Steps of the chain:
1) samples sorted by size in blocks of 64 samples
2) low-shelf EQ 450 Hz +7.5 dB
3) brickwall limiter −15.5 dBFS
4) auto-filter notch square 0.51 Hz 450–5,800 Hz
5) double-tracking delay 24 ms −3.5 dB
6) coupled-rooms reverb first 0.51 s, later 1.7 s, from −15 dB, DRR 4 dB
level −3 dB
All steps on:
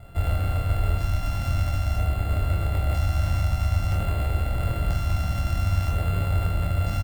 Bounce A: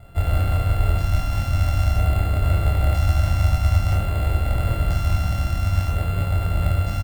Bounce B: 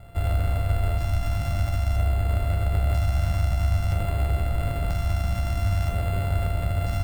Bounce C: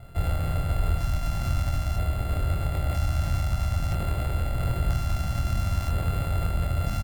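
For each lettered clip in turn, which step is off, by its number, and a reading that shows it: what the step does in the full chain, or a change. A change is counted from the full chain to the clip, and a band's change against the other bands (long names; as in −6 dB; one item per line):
3, average gain reduction 3.0 dB
5, change in crest factor −2.0 dB
6, 8 kHz band +2.5 dB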